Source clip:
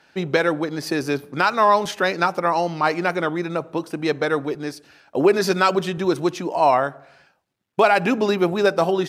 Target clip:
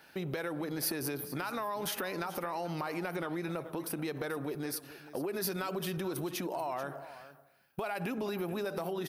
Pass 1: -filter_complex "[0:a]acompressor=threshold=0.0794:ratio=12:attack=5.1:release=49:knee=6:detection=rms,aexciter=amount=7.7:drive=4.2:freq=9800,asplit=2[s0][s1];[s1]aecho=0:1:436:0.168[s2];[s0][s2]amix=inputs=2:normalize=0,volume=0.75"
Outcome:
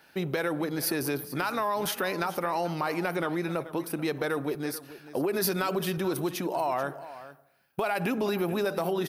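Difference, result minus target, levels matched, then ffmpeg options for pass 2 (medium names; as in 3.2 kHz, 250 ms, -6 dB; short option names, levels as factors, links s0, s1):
compression: peak gain reduction -8 dB
-filter_complex "[0:a]acompressor=threshold=0.0299:ratio=12:attack=5.1:release=49:knee=6:detection=rms,aexciter=amount=7.7:drive=4.2:freq=9800,asplit=2[s0][s1];[s1]aecho=0:1:436:0.168[s2];[s0][s2]amix=inputs=2:normalize=0,volume=0.75"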